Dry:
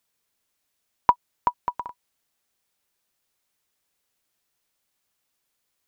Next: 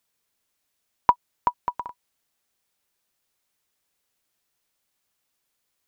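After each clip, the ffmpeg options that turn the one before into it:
-af anull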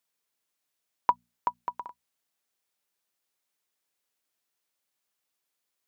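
-af "highpass=f=180:p=1,bandreject=f=60:t=h:w=6,bandreject=f=120:t=h:w=6,bandreject=f=180:t=h:w=6,bandreject=f=240:t=h:w=6,volume=-5.5dB"

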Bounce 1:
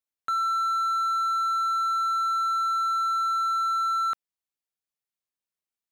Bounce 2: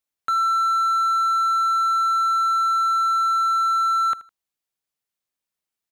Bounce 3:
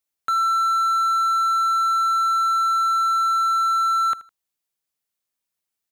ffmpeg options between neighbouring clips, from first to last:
-af "aecho=1:1:79|158:0.112|0.0281,volume=5dB"
-af "highshelf=f=5.8k:g=4.5"

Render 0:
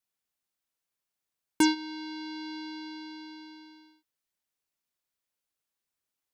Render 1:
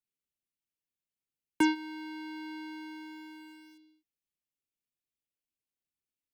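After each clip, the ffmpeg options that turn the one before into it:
-filter_complex "[0:a]highshelf=f=3.2k:t=q:w=1.5:g=-7,acrossover=split=230|480|2500[a][b][c][d];[c]aeval=exprs='val(0)*gte(abs(val(0)),0.0015)':c=same[e];[a][b][e][d]amix=inputs=4:normalize=0,volume=-2.5dB"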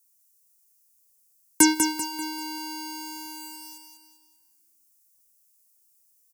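-af "aexciter=amount=10.6:drive=4.8:freq=5.1k,aecho=1:1:195|390|585|780|975:0.501|0.205|0.0842|0.0345|0.0142,volume=6dB"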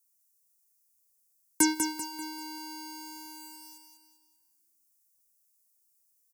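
-af "equalizer=f=3k:t=o:w=0.22:g=-7.5,volume=-6.5dB"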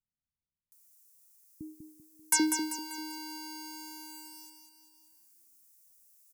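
-filter_complex "[0:a]acompressor=mode=upward:threshold=-53dB:ratio=2.5,acrossover=split=190|630[a][b][c];[c]adelay=720[d];[b]adelay=790[e];[a][e][d]amix=inputs=3:normalize=0"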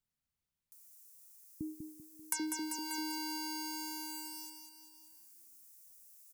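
-af "acompressor=threshold=-38dB:ratio=6,volume=3.5dB"

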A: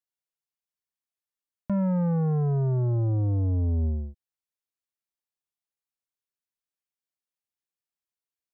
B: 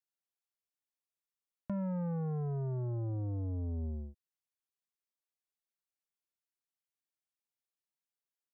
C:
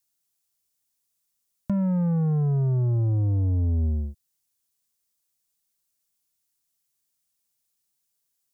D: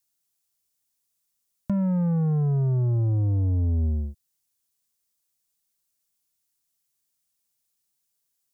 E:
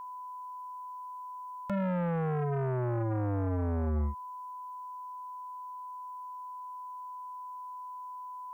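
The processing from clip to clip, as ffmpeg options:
-af "lowshelf=f=83:g=-6.5,acompressor=threshold=-30dB:ratio=2.5,volume=-5.5dB"
-af "bass=f=250:g=8,treble=f=4k:g=13,volume=6dB"
-af anull
-af "aeval=exprs='val(0)+0.00794*sin(2*PI*1000*n/s)':c=same,aeval=exprs='0.141*(cos(1*acos(clip(val(0)/0.141,-1,1)))-cos(1*PI/2))+0.0708*(cos(5*acos(clip(val(0)/0.141,-1,1)))-cos(5*PI/2))':c=same,volume=-8.5dB"

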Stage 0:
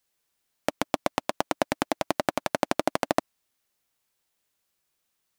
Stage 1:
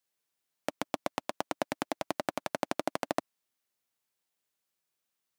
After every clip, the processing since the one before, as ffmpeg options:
-af "highpass=100,volume=-7dB"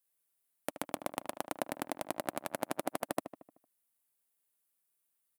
-filter_complex "[0:a]highshelf=f=7.8k:t=q:w=1.5:g=9,asplit=2[a][b];[b]adelay=76,lowpass=f=2.4k:p=1,volume=-11dB,asplit=2[c][d];[d]adelay=76,lowpass=f=2.4k:p=1,volume=0.54,asplit=2[e][f];[f]adelay=76,lowpass=f=2.4k:p=1,volume=0.54,asplit=2[g][h];[h]adelay=76,lowpass=f=2.4k:p=1,volume=0.54,asplit=2[i][j];[j]adelay=76,lowpass=f=2.4k:p=1,volume=0.54,asplit=2[k][l];[l]adelay=76,lowpass=f=2.4k:p=1,volume=0.54[m];[c][e][g][i][k][m]amix=inputs=6:normalize=0[n];[a][n]amix=inputs=2:normalize=0,volume=-4dB"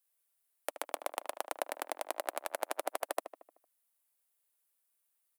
-af "highpass=f=430:w=0.5412,highpass=f=430:w=1.3066,volume=1dB"

